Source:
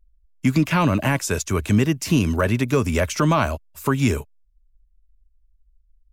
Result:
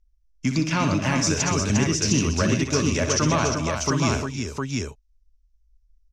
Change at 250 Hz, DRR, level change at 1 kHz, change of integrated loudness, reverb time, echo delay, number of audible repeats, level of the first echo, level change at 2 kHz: -2.0 dB, none, -2.0 dB, -1.5 dB, none, 60 ms, 5, -9.0 dB, -1.0 dB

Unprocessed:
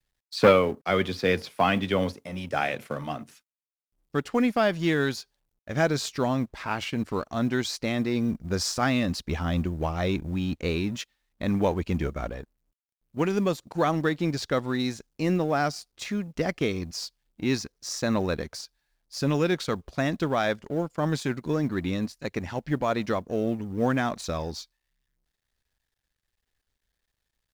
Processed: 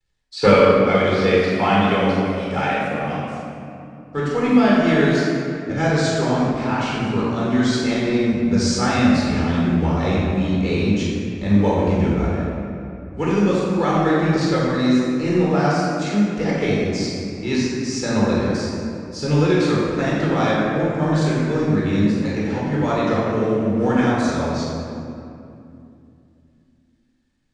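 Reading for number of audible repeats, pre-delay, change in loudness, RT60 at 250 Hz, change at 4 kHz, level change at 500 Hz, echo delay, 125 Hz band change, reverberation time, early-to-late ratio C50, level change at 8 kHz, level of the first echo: none, 17 ms, +8.0 dB, 3.8 s, +5.0 dB, +7.5 dB, none, +9.0 dB, 2.7 s, -3.0 dB, +4.5 dB, none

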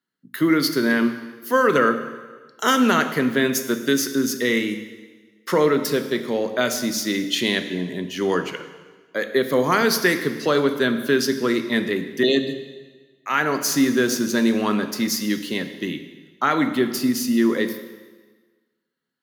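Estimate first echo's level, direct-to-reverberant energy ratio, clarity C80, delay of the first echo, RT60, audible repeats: none, 8.0 dB, 11.5 dB, none, 1.4 s, none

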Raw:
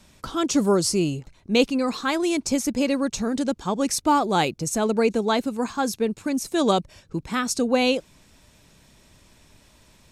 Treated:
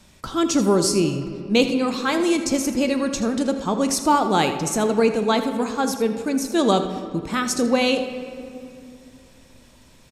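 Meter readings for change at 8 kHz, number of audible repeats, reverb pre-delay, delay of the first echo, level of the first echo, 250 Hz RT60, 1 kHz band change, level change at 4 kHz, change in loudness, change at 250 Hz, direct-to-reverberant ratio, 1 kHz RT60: +2.0 dB, 1, 5 ms, 81 ms, -13.0 dB, 3.6 s, +2.5 dB, +2.0 dB, +2.0 dB, +2.5 dB, 6.5 dB, 2.3 s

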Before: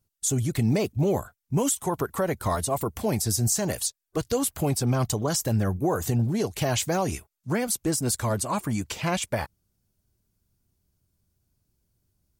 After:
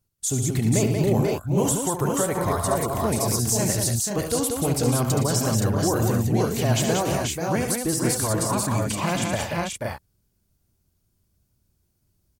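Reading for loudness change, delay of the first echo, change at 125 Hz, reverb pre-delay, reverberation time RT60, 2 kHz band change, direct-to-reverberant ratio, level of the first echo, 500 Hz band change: +3.5 dB, 71 ms, +3.5 dB, none, none, +3.5 dB, none, -8.0 dB, +3.5 dB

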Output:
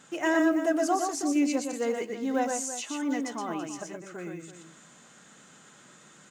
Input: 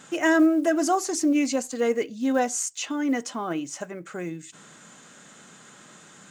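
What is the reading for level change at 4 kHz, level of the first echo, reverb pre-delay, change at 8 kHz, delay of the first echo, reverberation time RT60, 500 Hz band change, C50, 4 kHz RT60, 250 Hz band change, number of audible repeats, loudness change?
-4.5 dB, -4.0 dB, none, -4.5 dB, 0.12 s, none, -3.5 dB, none, none, -4.5 dB, 2, -4.0 dB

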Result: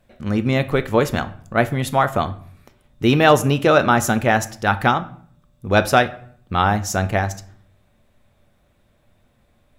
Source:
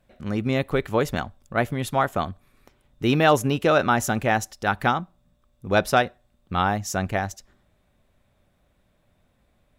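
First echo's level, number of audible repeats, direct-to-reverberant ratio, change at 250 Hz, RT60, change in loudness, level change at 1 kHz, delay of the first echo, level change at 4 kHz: none, none, 10.5 dB, +5.0 dB, 0.55 s, +5.0 dB, +4.5 dB, none, +5.0 dB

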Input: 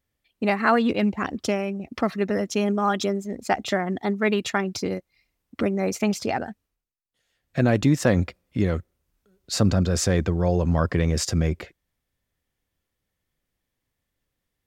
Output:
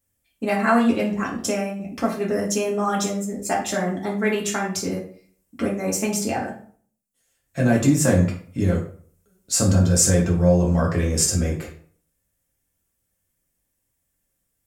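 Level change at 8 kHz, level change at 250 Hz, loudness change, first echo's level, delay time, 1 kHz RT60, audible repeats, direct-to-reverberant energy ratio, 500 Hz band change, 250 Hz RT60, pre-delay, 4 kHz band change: +10.5 dB, +2.0 dB, +2.5 dB, none, none, 0.50 s, none, -3.5 dB, +1.5 dB, 0.50 s, 3 ms, +1.5 dB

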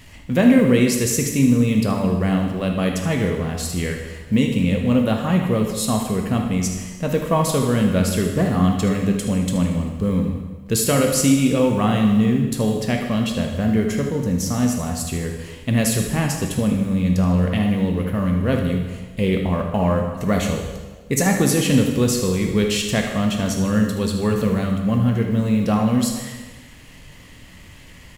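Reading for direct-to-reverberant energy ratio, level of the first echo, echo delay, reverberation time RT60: 1.5 dB, -11.5 dB, 77 ms, 1.3 s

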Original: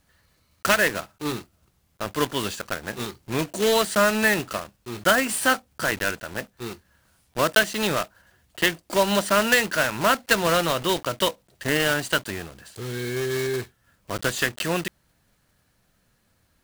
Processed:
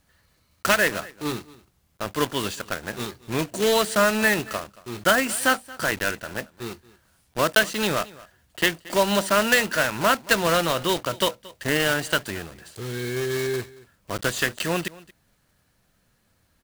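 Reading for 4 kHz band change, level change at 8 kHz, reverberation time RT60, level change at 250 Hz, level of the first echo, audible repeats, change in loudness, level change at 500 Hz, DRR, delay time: 0.0 dB, 0.0 dB, none, 0.0 dB, -21.0 dB, 1, 0.0 dB, 0.0 dB, none, 0.227 s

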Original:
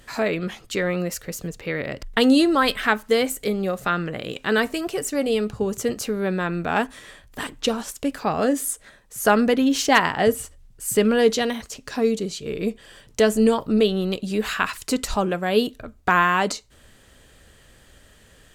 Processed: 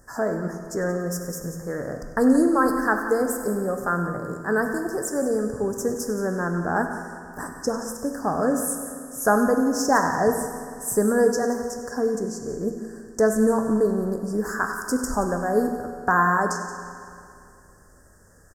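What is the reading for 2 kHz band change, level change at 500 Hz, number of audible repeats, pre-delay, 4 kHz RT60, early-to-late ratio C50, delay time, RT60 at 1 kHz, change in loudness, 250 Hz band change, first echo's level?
-3.0 dB, -1.0 dB, 2, 12 ms, 2.3 s, 5.5 dB, 98 ms, 2.5 s, -1.5 dB, -1.0 dB, -15.0 dB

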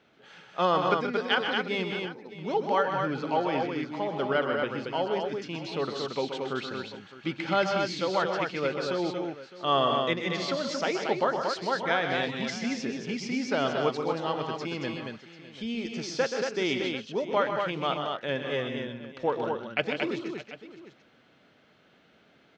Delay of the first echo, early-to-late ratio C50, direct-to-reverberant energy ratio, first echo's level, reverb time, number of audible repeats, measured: 0.128 s, none, none, -8.5 dB, none, 4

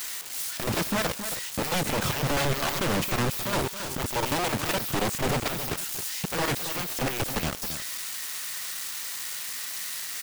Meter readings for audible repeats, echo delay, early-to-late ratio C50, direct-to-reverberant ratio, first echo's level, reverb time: 1, 0.271 s, none, none, -10.0 dB, none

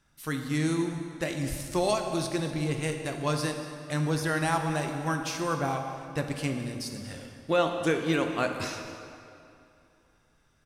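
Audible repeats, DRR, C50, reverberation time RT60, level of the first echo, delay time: 1, 4.0 dB, 5.5 dB, 2.7 s, -17.5 dB, 0.236 s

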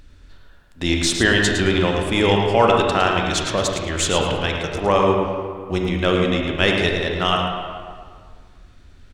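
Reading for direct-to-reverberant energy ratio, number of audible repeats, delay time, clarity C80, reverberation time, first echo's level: 0.0 dB, 1, 0.109 s, 2.0 dB, 1.9 s, -7.5 dB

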